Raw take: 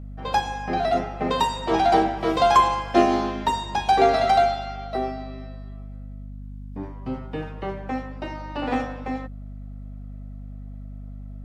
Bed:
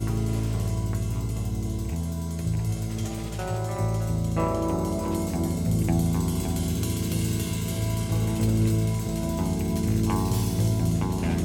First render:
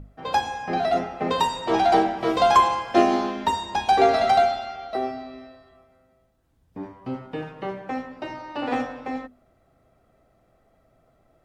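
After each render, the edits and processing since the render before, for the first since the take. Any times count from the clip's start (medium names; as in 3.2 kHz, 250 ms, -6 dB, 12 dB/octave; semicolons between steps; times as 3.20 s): hum notches 50/100/150/200/250 Hz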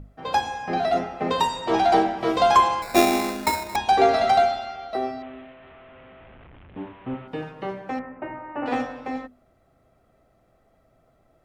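2.82–3.76 s: sample-rate reducer 3.1 kHz; 5.22–7.28 s: one-bit delta coder 16 kbps, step -41.5 dBFS; 7.99–8.66 s: steep low-pass 2.3 kHz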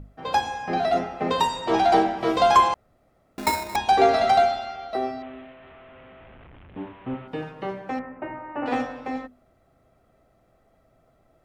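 2.74–3.38 s: room tone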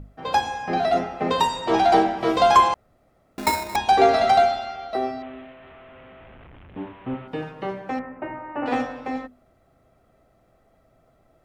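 trim +1.5 dB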